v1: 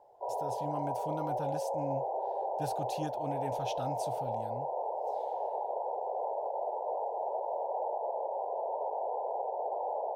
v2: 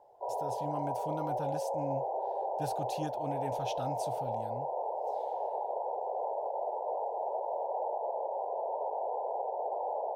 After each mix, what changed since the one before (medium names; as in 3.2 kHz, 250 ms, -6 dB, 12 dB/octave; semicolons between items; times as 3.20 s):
no change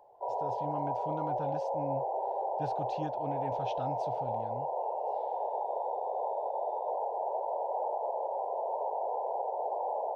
speech: add distance through air 200 m; background: remove low-pass 1 kHz 12 dB/octave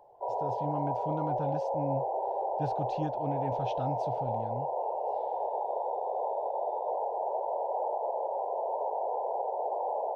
master: add bass shelf 360 Hz +6.5 dB